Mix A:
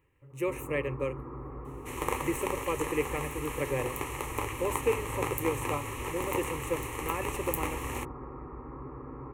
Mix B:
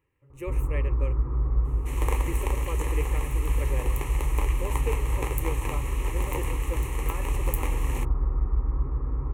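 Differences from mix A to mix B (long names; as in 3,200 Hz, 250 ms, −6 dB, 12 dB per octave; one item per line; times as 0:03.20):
speech −5.0 dB
first sound: remove high-pass filter 200 Hz 12 dB per octave
second sound: add parametric band 1,300 Hz −5.5 dB 0.43 octaves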